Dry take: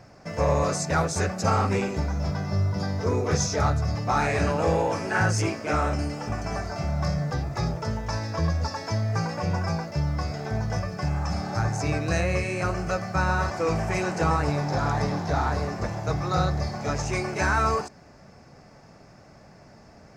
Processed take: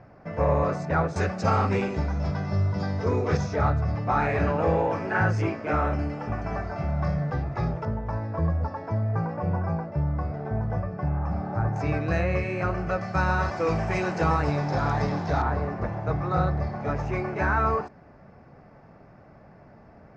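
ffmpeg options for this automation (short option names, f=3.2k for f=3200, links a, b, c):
-af "asetnsamples=n=441:p=0,asendcmd='1.16 lowpass f 3900;3.37 lowpass f 2300;7.85 lowpass f 1200;11.76 lowpass f 2500;13.01 lowpass f 4300;15.42 lowpass f 1900',lowpass=1.9k"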